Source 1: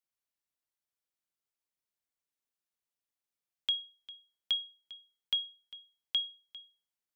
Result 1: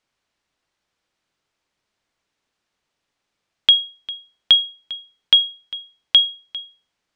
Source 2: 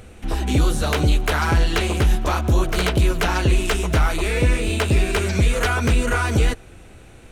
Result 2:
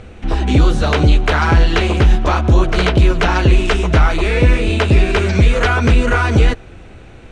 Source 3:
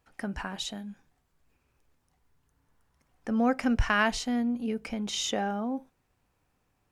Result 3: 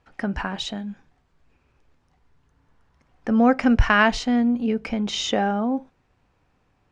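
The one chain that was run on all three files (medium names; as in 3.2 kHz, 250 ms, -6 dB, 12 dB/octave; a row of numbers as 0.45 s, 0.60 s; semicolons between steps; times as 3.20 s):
distance through air 110 m; peak normalisation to -3 dBFS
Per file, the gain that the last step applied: +20.5 dB, +6.5 dB, +8.5 dB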